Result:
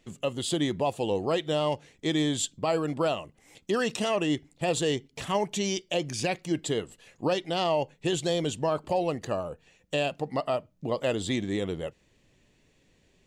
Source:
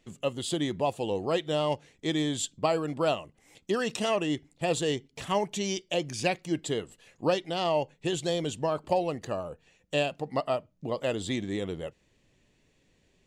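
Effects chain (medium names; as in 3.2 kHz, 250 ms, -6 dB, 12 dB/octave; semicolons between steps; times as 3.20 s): peak limiter -19.5 dBFS, peak gain reduction 7.5 dB; trim +2.5 dB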